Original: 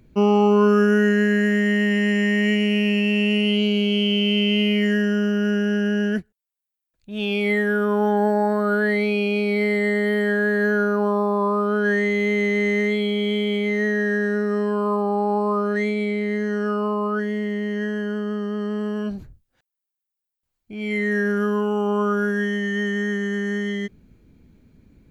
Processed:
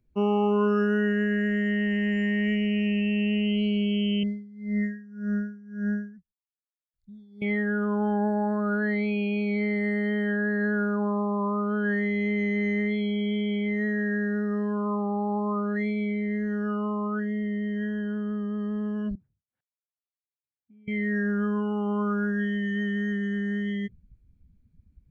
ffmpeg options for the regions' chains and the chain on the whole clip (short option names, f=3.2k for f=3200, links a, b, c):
-filter_complex "[0:a]asettb=1/sr,asplit=3[a][b][c];[a]atrim=end=4.234[d];[b]atrim=start=4.23:end=7.42,asetpts=PTS-STARTPTS,afade=t=in:d=0.004:c=qsin,afade=t=out:st=3.186:d=0.004:c=qsin,asuperstop=centerf=2700:order=20:qfactor=2.2,equalizer=f=490:t=o:w=0.35:g=-13.5,aeval=exprs='val(0)*pow(10,-21*(0.5-0.5*cos(2*PI*1.8*n/s))/20)':c=same[e];[c]atrim=start=7.416[f];[d][e]acrossfade=d=0.004:c1=hsin:c2=qsin[g];[g][f]acrossfade=d=0.004:c1=qsin:c2=hsin,asettb=1/sr,asplit=3[h][i][j];[h]atrim=end=19.154[k];[i]atrim=start=19.15:end=20.88,asetpts=PTS-STARTPTS,afade=t=in:d=0.004:c=qsin,afade=t=out:st=1.726:d=0.004:c=qsin,acompressor=threshold=-44dB:ratio=10:attack=3.2:release=140:knee=1:detection=peak,highpass=180,lowpass=2.4k[l];[j]atrim=start=20.876[m];[k][l]acrossfade=d=0.004:c1=hsin:c2=qsin[n];[n][m]acrossfade=d=0.004:c1=qsin:c2=hsin,afftdn=nr=15:nf=-35,acrossover=split=2800[o][p];[p]acompressor=threshold=-40dB:ratio=4:attack=1:release=60[q];[o][q]amix=inputs=2:normalize=0,asubboost=boost=4.5:cutoff=160,volume=-6.5dB"